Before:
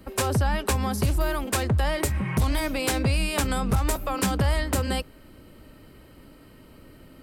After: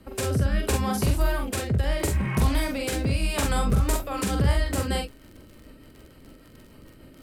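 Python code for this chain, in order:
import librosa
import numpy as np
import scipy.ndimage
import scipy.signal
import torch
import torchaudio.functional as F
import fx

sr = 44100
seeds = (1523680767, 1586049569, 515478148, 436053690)

y = fx.rotary_switch(x, sr, hz=0.75, then_hz=6.7, switch_at_s=3.43)
y = fx.dmg_crackle(y, sr, seeds[0], per_s=30.0, level_db=-38.0)
y = fx.room_early_taps(y, sr, ms=(44, 66), db=(-3.5, -12.5))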